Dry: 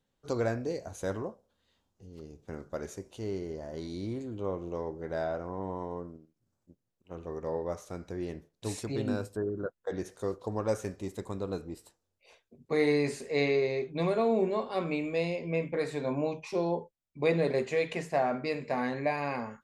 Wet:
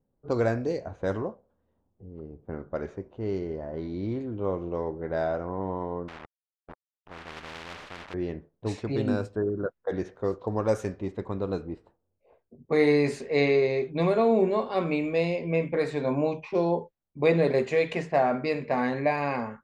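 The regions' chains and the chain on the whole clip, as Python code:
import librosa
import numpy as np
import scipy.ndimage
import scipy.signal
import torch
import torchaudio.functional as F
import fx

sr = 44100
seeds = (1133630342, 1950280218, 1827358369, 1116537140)

y = fx.chain(x, sr, fx.quant_companded(bits=4),
    fx.spectral_comp(ratio=10.0), at=(6.08, 8.14))
y = fx.env_lowpass(y, sr, base_hz=650.0, full_db=-27.0)
y = fx.high_shelf(y, sr, hz=5600.0, db=-8.5)
y = y * 10.0 ** (5.0 / 20.0)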